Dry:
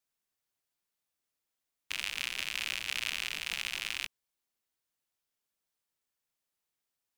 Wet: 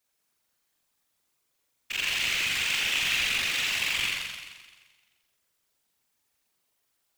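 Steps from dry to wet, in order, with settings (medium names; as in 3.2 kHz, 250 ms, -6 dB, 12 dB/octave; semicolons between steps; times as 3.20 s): flutter echo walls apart 7.4 m, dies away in 1.4 s; overload inside the chain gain 25 dB; whisper effect; trim +6.5 dB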